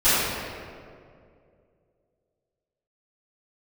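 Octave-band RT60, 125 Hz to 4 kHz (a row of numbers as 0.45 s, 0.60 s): 2.7 s, 2.6 s, 2.7 s, 2.0 s, 1.7 s, 1.2 s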